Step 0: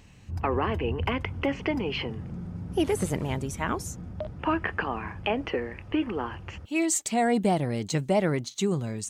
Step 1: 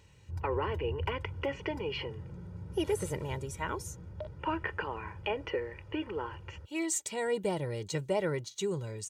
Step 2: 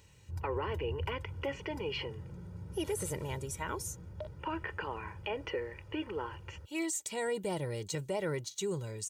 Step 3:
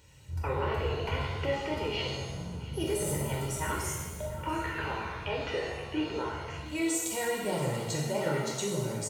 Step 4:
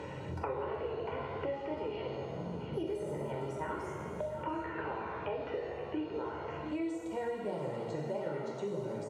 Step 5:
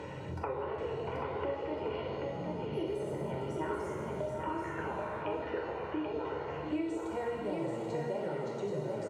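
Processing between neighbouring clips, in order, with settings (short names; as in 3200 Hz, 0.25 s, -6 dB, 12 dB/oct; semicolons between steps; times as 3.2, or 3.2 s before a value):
HPF 55 Hz; comb 2.1 ms, depth 71%; gain -7.5 dB
high shelf 6300 Hz +9 dB; limiter -24.5 dBFS, peak gain reduction 11 dB; gain -1.5 dB
echo 0.685 s -17.5 dB; shimmer reverb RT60 1.1 s, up +7 st, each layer -8 dB, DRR -3 dB
band-pass 480 Hz, Q 0.67; three-band squash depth 100%; gain -3.5 dB
echo 0.783 s -4 dB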